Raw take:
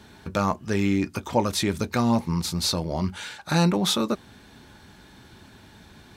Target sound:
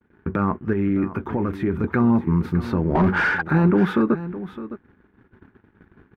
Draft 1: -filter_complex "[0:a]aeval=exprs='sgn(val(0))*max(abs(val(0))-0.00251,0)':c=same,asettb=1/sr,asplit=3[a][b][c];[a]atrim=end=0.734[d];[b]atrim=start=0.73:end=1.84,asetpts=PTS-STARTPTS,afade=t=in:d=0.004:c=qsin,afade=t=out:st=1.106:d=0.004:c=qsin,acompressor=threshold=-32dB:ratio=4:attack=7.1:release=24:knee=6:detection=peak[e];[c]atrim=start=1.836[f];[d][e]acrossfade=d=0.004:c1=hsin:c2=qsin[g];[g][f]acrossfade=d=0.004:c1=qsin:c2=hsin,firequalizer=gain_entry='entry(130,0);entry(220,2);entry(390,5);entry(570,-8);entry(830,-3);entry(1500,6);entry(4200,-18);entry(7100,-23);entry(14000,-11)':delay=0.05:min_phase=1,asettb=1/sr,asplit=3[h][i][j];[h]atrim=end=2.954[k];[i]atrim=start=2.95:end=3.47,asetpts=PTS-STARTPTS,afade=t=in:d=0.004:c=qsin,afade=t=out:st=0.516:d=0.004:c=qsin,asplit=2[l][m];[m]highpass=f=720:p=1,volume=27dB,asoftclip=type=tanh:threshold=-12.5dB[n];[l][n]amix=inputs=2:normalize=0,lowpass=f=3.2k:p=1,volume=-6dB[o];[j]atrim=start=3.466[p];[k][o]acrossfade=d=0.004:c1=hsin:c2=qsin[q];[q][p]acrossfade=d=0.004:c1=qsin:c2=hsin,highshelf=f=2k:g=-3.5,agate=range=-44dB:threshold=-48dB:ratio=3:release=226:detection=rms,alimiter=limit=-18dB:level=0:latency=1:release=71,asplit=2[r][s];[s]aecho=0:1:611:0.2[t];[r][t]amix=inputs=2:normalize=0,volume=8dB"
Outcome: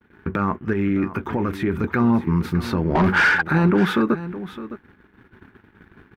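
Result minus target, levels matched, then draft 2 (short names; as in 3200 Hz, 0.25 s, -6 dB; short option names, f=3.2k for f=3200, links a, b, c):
4000 Hz band +7.5 dB
-filter_complex "[0:a]aeval=exprs='sgn(val(0))*max(abs(val(0))-0.00251,0)':c=same,asettb=1/sr,asplit=3[a][b][c];[a]atrim=end=0.734[d];[b]atrim=start=0.73:end=1.84,asetpts=PTS-STARTPTS,afade=t=in:d=0.004:c=qsin,afade=t=out:st=1.106:d=0.004:c=qsin,acompressor=threshold=-32dB:ratio=4:attack=7.1:release=24:knee=6:detection=peak[e];[c]atrim=start=1.836[f];[d][e]acrossfade=d=0.004:c1=hsin:c2=qsin[g];[g][f]acrossfade=d=0.004:c1=qsin:c2=hsin,firequalizer=gain_entry='entry(130,0);entry(220,2);entry(390,5);entry(570,-8);entry(830,-3);entry(1500,6);entry(4200,-18);entry(7100,-23);entry(14000,-11)':delay=0.05:min_phase=1,asettb=1/sr,asplit=3[h][i][j];[h]atrim=end=2.954[k];[i]atrim=start=2.95:end=3.47,asetpts=PTS-STARTPTS,afade=t=in:d=0.004:c=qsin,afade=t=out:st=0.516:d=0.004:c=qsin,asplit=2[l][m];[m]highpass=f=720:p=1,volume=27dB,asoftclip=type=tanh:threshold=-12.5dB[n];[l][n]amix=inputs=2:normalize=0,lowpass=f=3.2k:p=1,volume=-6dB[o];[j]atrim=start=3.466[p];[k][o]acrossfade=d=0.004:c1=hsin:c2=qsin[q];[q][p]acrossfade=d=0.004:c1=qsin:c2=hsin,highshelf=f=2k:g=-15,agate=range=-44dB:threshold=-48dB:ratio=3:release=226:detection=rms,alimiter=limit=-18dB:level=0:latency=1:release=71,asplit=2[r][s];[s]aecho=0:1:611:0.2[t];[r][t]amix=inputs=2:normalize=0,volume=8dB"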